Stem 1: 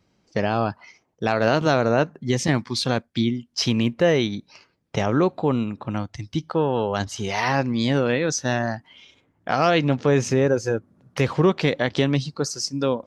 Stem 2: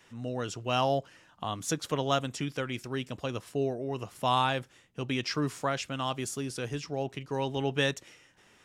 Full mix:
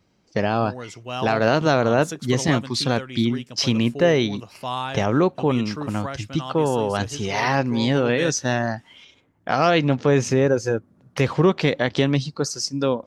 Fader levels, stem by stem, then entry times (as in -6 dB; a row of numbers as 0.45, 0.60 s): +1.0, -1.5 dB; 0.00, 0.40 s